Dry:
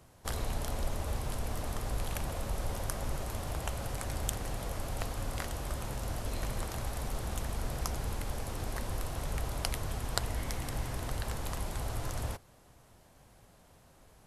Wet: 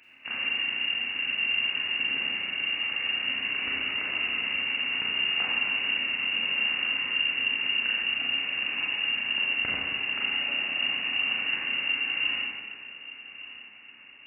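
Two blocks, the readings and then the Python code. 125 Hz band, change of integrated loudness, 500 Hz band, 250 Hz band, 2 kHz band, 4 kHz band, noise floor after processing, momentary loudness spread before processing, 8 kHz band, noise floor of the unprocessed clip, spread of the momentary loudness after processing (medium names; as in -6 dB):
under -15 dB, +11.5 dB, -6.5 dB, -2.5 dB, +20.5 dB, +19.5 dB, -49 dBFS, 3 LU, under -40 dB, -60 dBFS, 7 LU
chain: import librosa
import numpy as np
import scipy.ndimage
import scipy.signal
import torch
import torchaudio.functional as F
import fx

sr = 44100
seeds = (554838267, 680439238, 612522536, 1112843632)

y = fx.freq_invert(x, sr, carrier_hz=2800)
y = fx.peak_eq(y, sr, hz=260.0, db=11.5, octaves=0.59)
y = fx.rider(y, sr, range_db=10, speed_s=0.5)
y = y * (1.0 - 0.47 / 2.0 + 0.47 / 2.0 * np.cos(2.0 * np.pi * 8.5 * (np.arange(len(y)) / sr)))
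y = scipy.signal.sosfilt(scipy.signal.butter(2, 65.0, 'highpass', fs=sr, output='sos'), y)
y = fx.echo_feedback(y, sr, ms=1180, feedback_pct=33, wet_db=-16)
y = fx.rev_schroeder(y, sr, rt60_s=1.6, comb_ms=30, drr_db=-5.5)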